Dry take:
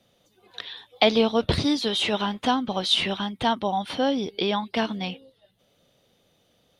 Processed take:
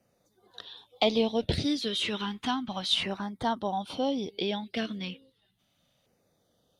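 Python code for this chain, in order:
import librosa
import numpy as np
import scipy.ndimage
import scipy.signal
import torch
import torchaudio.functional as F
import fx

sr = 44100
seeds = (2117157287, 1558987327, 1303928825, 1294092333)

y = fx.filter_lfo_notch(x, sr, shape='saw_down', hz=0.33, low_hz=360.0, high_hz=3600.0, q=1.1)
y = fx.cheby_harmonics(y, sr, harmonics=(2,), levels_db=(-25,), full_scale_db=-5.5)
y = y * 10.0 ** (-5.0 / 20.0)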